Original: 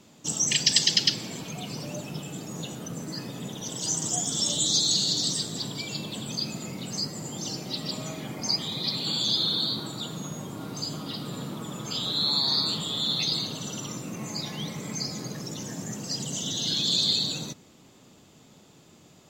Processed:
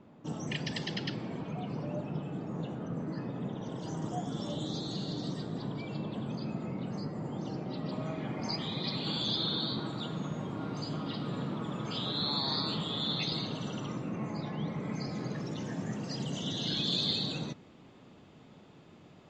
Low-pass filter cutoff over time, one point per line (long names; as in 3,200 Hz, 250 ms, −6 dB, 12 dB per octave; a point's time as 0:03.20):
0:07.84 1,400 Hz
0:08.55 2,600 Hz
0:13.60 2,600 Hz
0:14.60 1,400 Hz
0:15.31 2,700 Hz